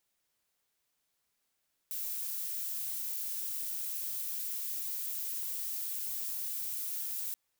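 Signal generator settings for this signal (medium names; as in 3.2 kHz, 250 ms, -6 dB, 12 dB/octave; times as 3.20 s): noise violet, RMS -37 dBFS 5.43 s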